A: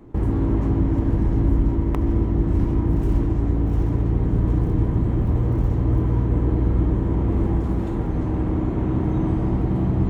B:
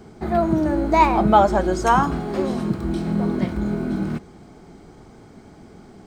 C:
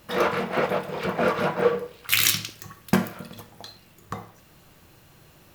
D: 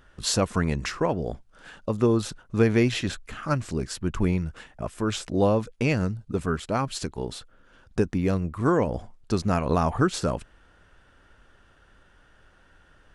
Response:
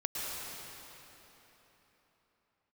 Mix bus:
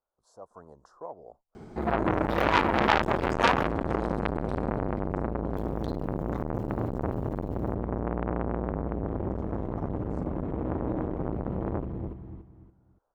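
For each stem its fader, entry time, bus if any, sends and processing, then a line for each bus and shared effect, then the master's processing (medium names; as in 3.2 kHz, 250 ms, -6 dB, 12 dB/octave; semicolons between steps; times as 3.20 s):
-4.5 dB, 1.75 s, no send, echo send -6.5 dB, treble shelf 6.1 kHz -11.5 dB
4.60 s -1 dB -> 5.01 s -13 dB, 1.55 s, no send, no echo send, none
+2.5 dB, 2.20 s, muted 3.67–5.54 s, no send, no echo send, none
-20.0 dB, 0.00 s, no send, no echo send, Chebyshev band-stop 850–6000 Hz, order 2; three-band isolator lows -21 dB, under 520 Hz, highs -14 dB, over 2.3 kHz; level rider gain up to 11 dB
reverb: none
echo: feedback delay 285 ms, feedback 29%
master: treble shelf 2.6 kHz -7 dB; transformer saturation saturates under 2.4 kHz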